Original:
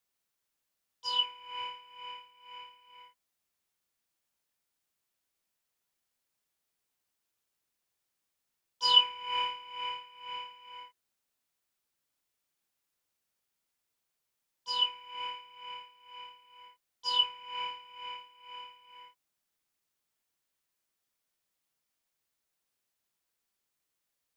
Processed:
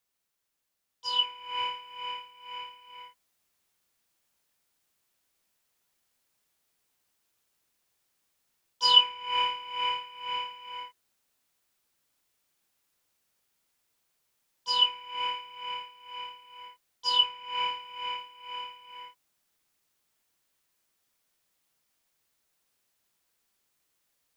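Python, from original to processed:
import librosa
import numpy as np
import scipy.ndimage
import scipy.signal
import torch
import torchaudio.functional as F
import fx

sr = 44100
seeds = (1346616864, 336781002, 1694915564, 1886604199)

y = fx.rider(x, sr, range_db=5, speed_s=0.5)
y = y * 10.0 ** (2.5 / 20.0)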